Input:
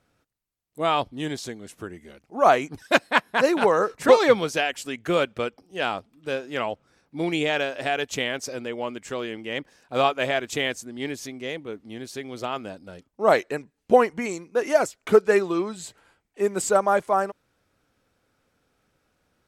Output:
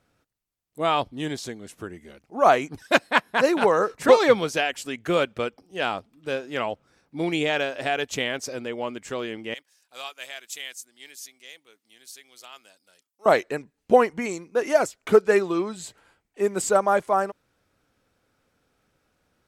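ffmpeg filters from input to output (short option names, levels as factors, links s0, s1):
-filter_complex "[0:a]asettb=1/sr,asplit=3[s0][s1][s2];[s0]atrim=end=9.544[s3];[s1]atrim=start=9.54:end=13.26,asetpts=PTS-STARTPTS,afade=t=in:d=0.004:c=qsin,afade=t=out:st=3.716:d=0.004:c=qsin,aderivative[s4];[s2]atrim=start=13.256[s5];[s3][s4]acrossfade=d=0.004:c1=hsin:c2=qsin[s6];[s6][s5]acrossfade=d=0.004:c1=qsin:c2=hsin"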